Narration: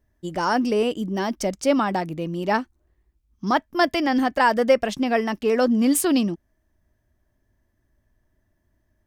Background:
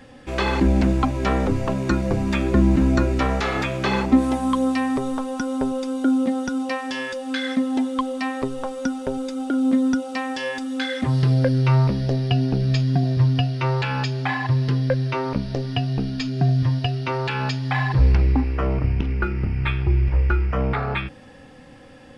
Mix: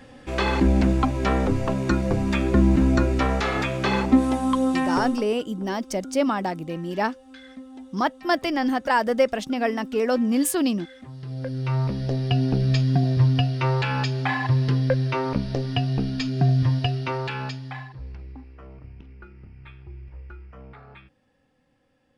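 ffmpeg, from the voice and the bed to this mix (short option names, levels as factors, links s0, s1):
-filter_complex "[0:a]adelay=4500,volume=0.75[s0];[1:a]volume=7.94,afade=t=out:st=5:d=0.29:silence=0.11885,afade=t=in:st=11.21:d=1.32:silence=0.112202,afade=t=out:st=16.86:d=1.07:silence=0.0841395[s1];[s0][s1]amix=inputs=2:normalize=0"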